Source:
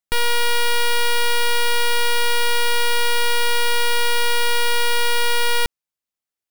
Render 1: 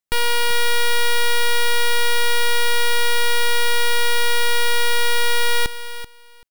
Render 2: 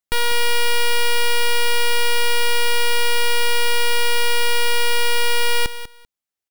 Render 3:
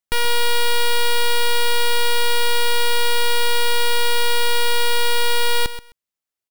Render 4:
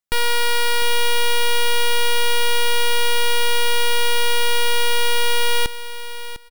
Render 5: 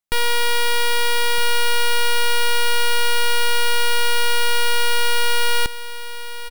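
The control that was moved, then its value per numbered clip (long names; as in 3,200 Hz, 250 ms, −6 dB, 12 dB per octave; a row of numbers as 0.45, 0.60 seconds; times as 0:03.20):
repeating echo, delay time: 385, 195, 130, 702, 1,264 milliseconds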